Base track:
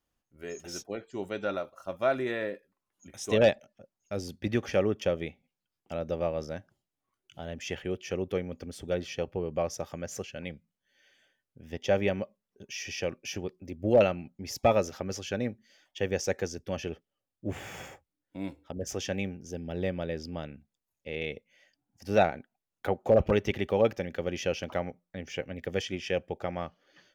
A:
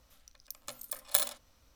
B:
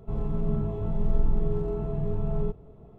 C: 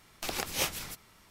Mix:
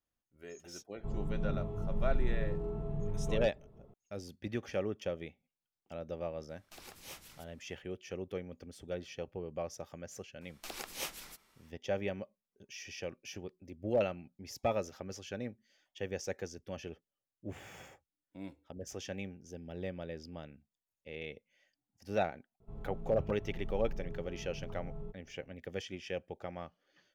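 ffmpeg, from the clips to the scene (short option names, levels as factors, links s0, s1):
-filter_complex "[2:a]asplit=2[s0][s1];[3:a]asplit=2[s2][s3];[0:a]volume=0.355[s4];[s2]asoftclip=type=tanh:threshold=0.0596[s5];[s3]equalizer=f=100:w=1.4:g=-14.5[s6];[s0]atrim=end=2.98,asetpts=PTS-STARTPTS,volume=0.398,afade=t=in:d=0.004:c=hsin,afade=t=out:st=2.976:d=0.004:c=hsin,adelay=960[s7];[s5]atrim=end=1.3,asetpts=PTS-STARTPTS,volume=0.158,afade=t=in:d=0.004:c=hsin,afade=t=out:st=1.296:d=0.004:c=hsin,adelay=6490[s8];[s6]atrim=end=1.3,asetpts=PTS-STARTPTS,volume=0.355,afade=t=in:d=0.004:c=hsin,afade=t=out:st=1.296:d=0.004:c=hsin,adelay=10410[s9];[s1]atrim=end=2.98,asetpts=PTS-STARTPTS,volume=0.15,afade=t=in:d=0.004:c=hsin,afade=t=out:st=2.976:d=0.004:c=hsin,adelay=996660S[s10];[s4][s7][s8][s9][s10]amix=inputs=5:normalize=0"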